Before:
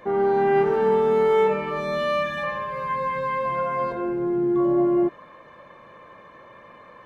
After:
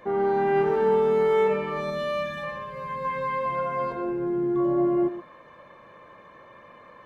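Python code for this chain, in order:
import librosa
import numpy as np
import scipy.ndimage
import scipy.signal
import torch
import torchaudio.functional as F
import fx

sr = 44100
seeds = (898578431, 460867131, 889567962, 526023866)

y = fx.peak_eq(x, sr, hz=1300.0, db=-5.0, octaves=2.5, at=(1.9, 3.05))
y = y + 10.0 ** (-13.0 / 20.0) * np.pad(y, (int(122 * sr / 1000.0), 0))[:len(y)]
y = y * 10.0 ** (-2.5 / 20.0)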